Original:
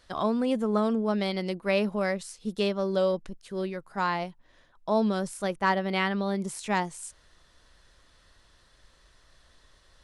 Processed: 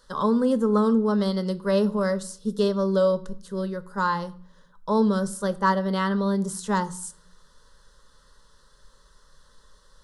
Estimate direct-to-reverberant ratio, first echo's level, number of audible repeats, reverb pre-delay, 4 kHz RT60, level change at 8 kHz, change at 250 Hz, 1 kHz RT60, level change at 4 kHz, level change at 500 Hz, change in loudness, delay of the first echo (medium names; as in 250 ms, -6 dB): 11.5 dB, no echo, no echo, 7 ms, 0.40 s, +4.5 dB, +5.5 dB, 0.50 s, -1.0 dB, +4.0 dB, +4.0 dB, no echo